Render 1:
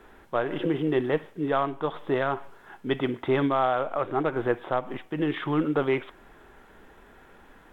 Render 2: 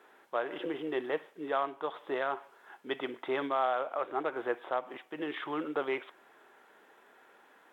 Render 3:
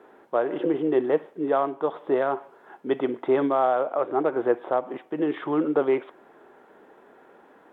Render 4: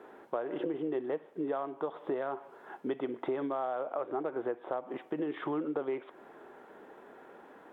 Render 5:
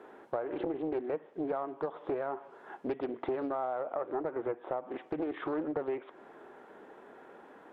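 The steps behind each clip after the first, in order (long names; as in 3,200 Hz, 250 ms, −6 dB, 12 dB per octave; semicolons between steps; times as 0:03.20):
high-pass filter 420 Hz 12 dB per octave; level −5 dB
tilt shelving filter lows +9.5 dB, about 1,100 Hz; level +5 dB
downward compressor 5 to 1, threshold −32 dBFS, peak gain reduction 15 dB
treble cut that deepens with the level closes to 2,500 Hz, closed at −31 dBFS; highs frequency-modulated by the lows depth 0.38 ms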